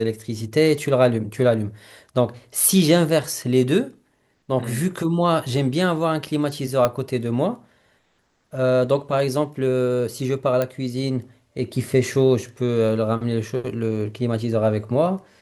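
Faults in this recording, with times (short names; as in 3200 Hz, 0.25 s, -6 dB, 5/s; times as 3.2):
6.85 pop -6 dBFS
10.62 pop -10 dBFS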